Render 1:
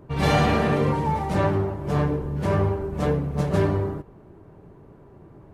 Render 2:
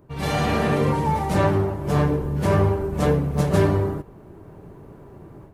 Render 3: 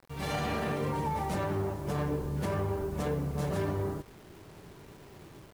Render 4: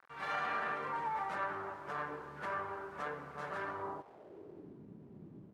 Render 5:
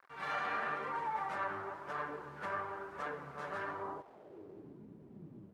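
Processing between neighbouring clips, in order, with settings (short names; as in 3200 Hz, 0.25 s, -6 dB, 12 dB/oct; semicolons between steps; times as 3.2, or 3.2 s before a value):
high shelf 7300 Hz +9.5 dB; AGC gain up to 10.5 dB; gain -5.5 dB
low shelf 410 Hz -2.5 dB; limiter -17 dBFS, peak gain reduction 8 dB; bit-crush 8-bit; gain -6.5 dB
band-pass sweep 1400 Hz -> 210 Hz, 3.71–4.85; gain +5 dB
flange 1 Hz, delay 1.7 ms, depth 9.3 ms, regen +56%; gain +4 dB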